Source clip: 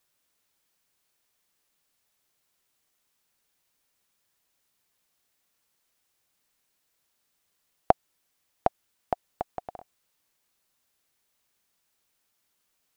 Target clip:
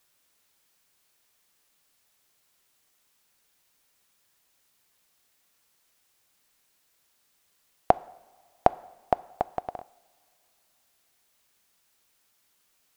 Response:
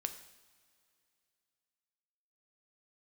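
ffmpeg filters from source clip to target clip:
-filter_complex "[0:a]alimiter=limit=0.501:level=0:latency=1,asplit=2[s0][s1];[1:a]atrim=start_sample=2205,asetrate=40572,aresample=44100,lowshelf=f=420:g=-9[s2];[s1][s2]afir=irnorm=-1:irlink=0,volume=0.531[s3];[s0][s3]amix=inputs=2:normalize=0,volume=1.33"

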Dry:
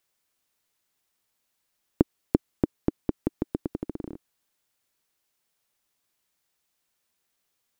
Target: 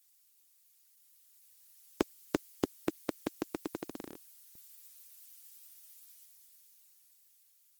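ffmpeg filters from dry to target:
-af "aderivative,dynaudnorm=f=250:g=13:m=2.99,volume=2.99" -ar 48000 -c:a libopus -b:a 16k

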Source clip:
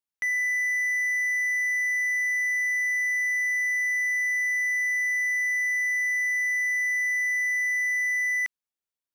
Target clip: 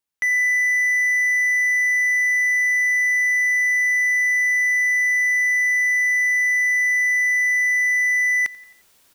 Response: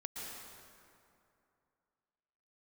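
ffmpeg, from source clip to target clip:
-af "areverse,acompressor=mode=upward:threshold=0.00891:ratio=2.5,areverse,aecho=1:1:88|176|264|352:0.0794|0.0445|0.0249|0.0139,volume=2.11"

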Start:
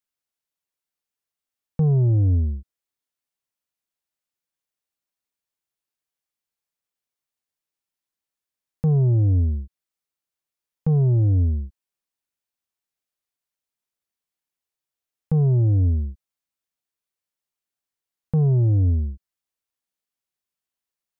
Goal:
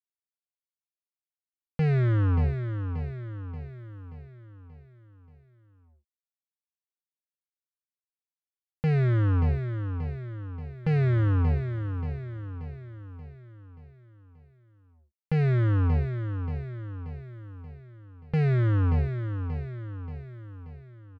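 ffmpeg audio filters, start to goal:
-af "acrusher=bits=3:mix=0:aa=0.5,aecho=1:1:581|1162|1743|2324|2905|3486:0.398|0.203|0.104|0.0528|0.0269|0.0137,volume=0.596"

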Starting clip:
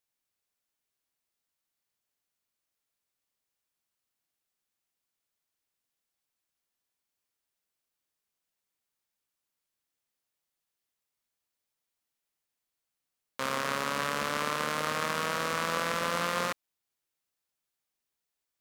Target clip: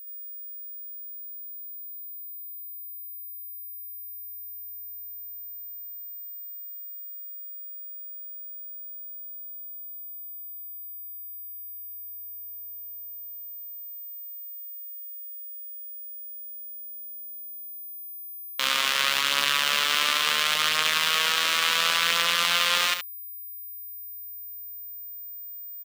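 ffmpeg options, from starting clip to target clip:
-filter_complex "[0:a]equalizer=f=3200:t=o:w=1:g=9.5,aeval=exprs='val(0)+0.00398*sin(2*PI*15000*n/s)':c=same,tiltshelf=f=970:g=-9,atempo=0.72,asplit=2[s0][s1];[s1]aecho=0:1:71:0.376[s2];[s0][s2]amix=inputs=2:normalize=0"

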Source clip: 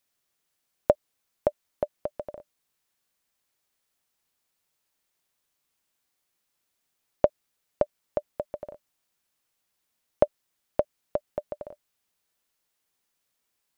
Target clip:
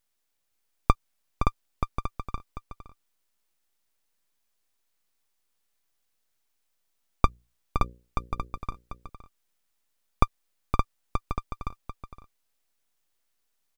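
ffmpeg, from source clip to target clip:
-filter_complex "[0:a]aeval=exprs='abs(val(0))':c=same,asettb=1/sr,asplit=3[s0][s1][s2];[s0]atrim=end=7.254[s3];[s1]atrim=start=7.25:end=8.58,asetpts=PTS-STARTPTS,afade=t=in:d=0.004:c=qsin,afade=t=out:st=1.326:d=0.004:c=qsin,bandreject=f=60:t=h:w=6,bandreject=f=120:t=h:w=6,bandreject=f=180:t=h:w=6,bandreject=f=240:t=h:w=6,bandreject=f=300:t=h:w=6,bandreject=f=360:t=h:w=6,bandreject=f=420:t=h:w=6,bandreject=f=480:t=h:w=6,bandreject=f=540:t=h:w=6[s4];[s2]atrim=start=8.576[s5];[s3][s4]acrossfade=d=0.004:c1=hsin:c2=qsin[s6];[s6][s5]acrossfade=d=0.004:c1=qsin:c2=hsin,aecho=1:1:516:0.422,volume=1.19"

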